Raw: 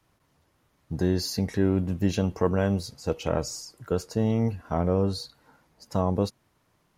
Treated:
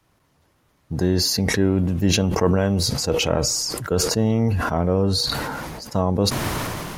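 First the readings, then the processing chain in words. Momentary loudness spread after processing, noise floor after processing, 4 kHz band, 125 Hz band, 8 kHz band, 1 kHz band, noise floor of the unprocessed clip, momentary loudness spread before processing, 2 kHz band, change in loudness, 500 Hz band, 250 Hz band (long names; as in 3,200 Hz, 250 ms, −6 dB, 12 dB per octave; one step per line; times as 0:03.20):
7 LU, −64 dBFS, +14.5 dB, +6.0 dB, +15.0 dB, +7.0 dB, −69 dBFS, 8 LU, +12.0 dB, +6.0 dB, +5.0 dB, +5.0 dB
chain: level that may fall only so fast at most 22 dB per second
level +4 dB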